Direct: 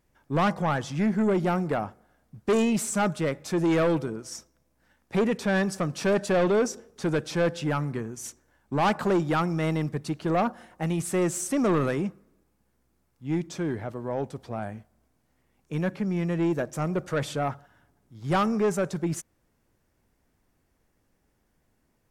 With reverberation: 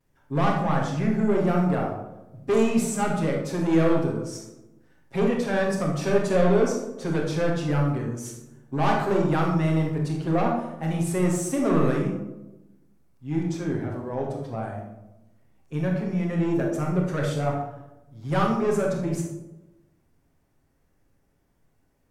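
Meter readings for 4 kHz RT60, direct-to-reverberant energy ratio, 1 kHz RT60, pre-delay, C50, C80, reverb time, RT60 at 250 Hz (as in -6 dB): 0.50 s, -11.5 dB, 0.85 s, 7 ms, 2.0 dB, 6.0 dB, 1.0 s, 1.2 s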